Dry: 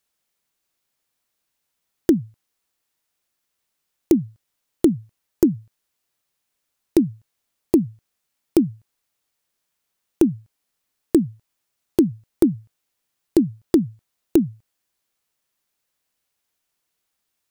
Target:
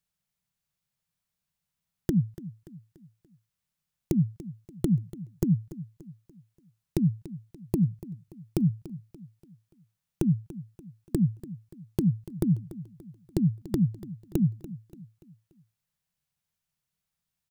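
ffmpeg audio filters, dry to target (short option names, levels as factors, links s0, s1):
-filter_complex "[0:a]lowshelf=f=220:t=q:w=3:g=9.5,asplit=2[s0][s1];[s1]aecho=0:1:289|578|867|1156:0.158|0.0697|0.0307|0.0135[s2];[s0][s2]amix=inputs=2:normalize=0,volume=0.355"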